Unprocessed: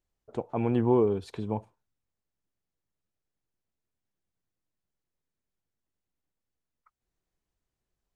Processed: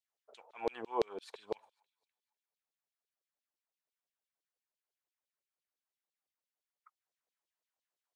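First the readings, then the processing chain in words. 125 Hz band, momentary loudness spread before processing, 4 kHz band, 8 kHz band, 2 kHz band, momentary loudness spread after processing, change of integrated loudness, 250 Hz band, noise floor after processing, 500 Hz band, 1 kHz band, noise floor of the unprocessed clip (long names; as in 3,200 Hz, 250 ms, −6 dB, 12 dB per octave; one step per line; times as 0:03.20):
−29.5 dB, 14 LU, −0.5 dB, can't be measured, −3.0 dB, 11 LU, −12.0 dB, −19.5 dB, below −85 dBFS, −10.5 dB, −6.5 dB, below −85 dBFS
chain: delay with a high-pass on its return 251 ms, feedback 42%, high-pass 2,300 Hz, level −23 dB
auto-filter high-pass saw down 5.9 Hz 440–4,200 Hz
level −6.5 dB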